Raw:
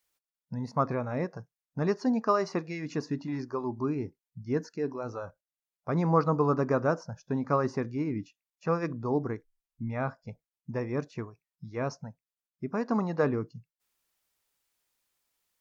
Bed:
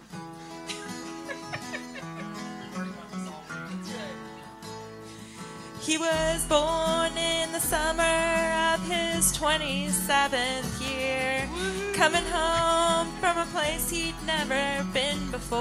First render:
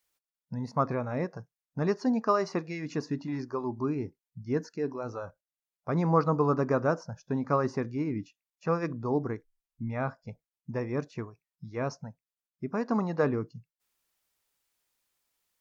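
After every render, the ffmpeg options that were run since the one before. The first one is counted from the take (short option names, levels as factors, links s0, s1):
-af anull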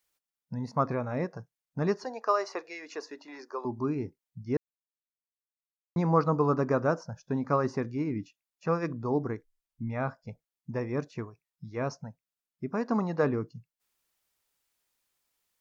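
-filter_complex "[0:a]asettb=1/sr,asplit=3[s0][s1][s2];[s0]atrim=end=2.044[s3];[s1]atrim=start=2.04:end=3.65,asetpts=PTS-STARTPTS,afade=t=in:d=0.004:c=qsin,afade=t=out:st=1.606:d=0.004:c=qsin,highpass=f=430:w=0.5412,highpass=f=430:w=1.3066[s4];[s2]atrim=start=3.646[s5];[s3][s4]acrossfade=d=0.004:c1=hsin:c2=qsin[s6];[s6][s5]acrossfade=d=0.004:c1=qsin:c2=hsin,asplit=3[s7][s8][s9];[s7]atrim=end=4.57,asetpts=PTS-STARTPTS,afade=t=out:st=4.566:d=0.004:c=hsin[s10];[s8]atrim=start=4.57:end=5.96,asetpts=PTS-STARTPTS,volume=0[s11];[s9]atrim=start=5.96,asetpts=PTS-STARTPTS,afade=t=in:d=0.004:c=hsin[s12];[s10][s11][s12]concat=n=3:v=0:a=1"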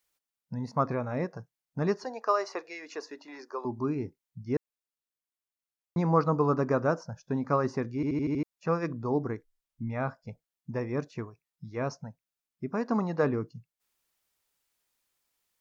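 -filter_complex "[0:a]asplit=7[s0][s1][s2][s3][s4][s5][s6];[s0]atrim=end=8.032[s7];[s1]atrim=start=7.948:end=8.032[s8];[s2]atrim=start=7.948:end=8.032[s9];[s3]atrim=start=7.948:end=8.032[s10];[s4]atrim=start=7.948:end=8.032[s11];[s5]atrim=start=7.948:end=8.032[s12];[s6]atrim=start=8.428[s13];[s7][s8]acrossfade=d=0.004:c1=hsin:c2=hsin[s14];[s14][s9]acrossfade=d=0.004:c1=hsin:c2=hsin[s15];[s15][s10]acrossfade=d=0.004:c1=hsin:c2=hsin[s16];[s16][s11]acrossfade=d=0.004:c1=hsin:c2=hsin[s17];[s17][s12]acrossfade=d=0.004:c1=hsin:c2=hsin[s18];[s18][s13]acrossfade=d=0.004:c1=hsin:c2=hsin"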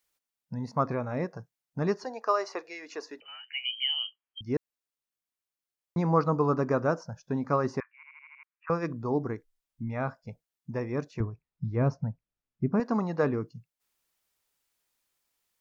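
-filter_complex "[0:a]asettb=1/sr,asplit=3[s0][s1][s2];[s0]atrim=end=3.204[s3];[s1]atrim=start=3.2:end=4.41,asetpts=PTS-STARTPTS,afade=t=in:d=0.004:c=qsin,afade=t=out:st=1.206:d=0.004:c=qsin,lowpass=f=2800:t=q:w=0.5098,lowpass=f=2800:t=q:w=0.6013,lowpass=f=2800:t=q:w=0.9,lowpass=f=2800:t=q:w=2.563,afreqshift=-3300[s4];[s2]atrim=start=4.406[s5];[s3][s4]acrossfade=d=0.004:c1=hsin:c2=qsin[s6];[s6][s5]acrossfade=d=0.004:c1=qsin:c2=hsin,asettb=1/sr,asplit=3[s7][s8][s9];[s7]atrim=end=7.804[s10];[s8]atrim=start=7.8:end=8.7,asetpts=PTS-STARTPTS,afade=t=in:d=0.004:c=qsin,afade=t=out:st=0.896:d=0.004:c=qsin,asuperpass=centerf=1600:order=12:qfactor=1[s11];[s9]atrim=start=8.696[s12];[s10][s11]acrossfade=d=0.004:c1=hsin:c2=qsin[s13];[s13][s12]acrossfade=d=0.004:c1=qsin:c2=hsin,asettb=1/sr,asplit=3[s14][s15][s16];[s14]atrim=end=11.204[s17];[s15]atrim=start=11.2:end=12.8,asetpts=PTS-STARTPTS,afade=t=in:d=0.004:c=qsin,afade=t=out:st=1.596:d=0.004:c=qsin,aemphasis=mode=reproduction:type=riaa[s18];[s16]atrim=start=12.796[s19];[s17][s18]acrossfade=d=0.004:c1=hsin:c2=qsin[s20];[s20][s19]acrossfade=d=0.004:c1=qsin:c2=hsin"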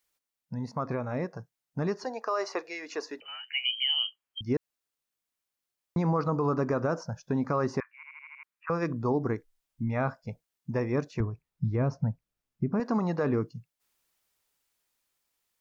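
-af "alimiter=limit=0.075:level=0:latency=1:release=85,dynaudnorm=f=380:g=11:m=1.58"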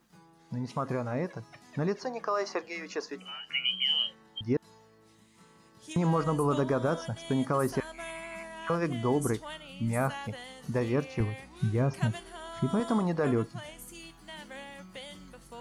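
-filter_complex "[1:a]volume=0.133[s0];[0:a][s0]amix=inputs=2:normalize=0"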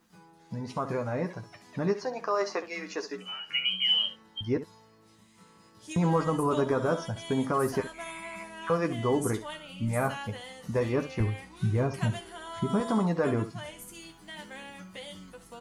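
-filter_complex "[0:a]asplit=2[s0][s1];[s1]adelay=12,volume=0.224[s2];[s0][s2]amix=inputs=2:normalize=0,aecho=1:1:10|68:0.501|0.224"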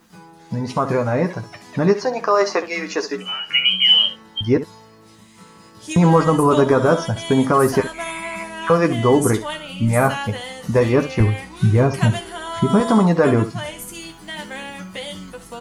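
-af "volume=3.98,alimiter=limit=0.708:level=0:latency=1"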